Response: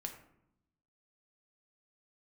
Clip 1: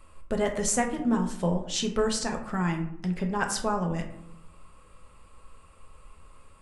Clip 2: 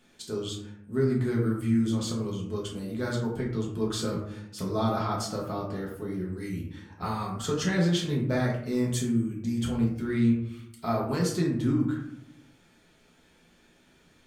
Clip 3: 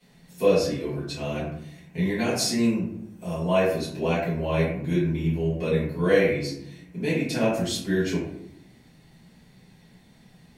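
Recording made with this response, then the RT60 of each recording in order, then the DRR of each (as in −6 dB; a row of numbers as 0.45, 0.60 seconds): 1; 0.80, 0.75, 0.75 seconds; 3.0, −3.5, −12.0 decibels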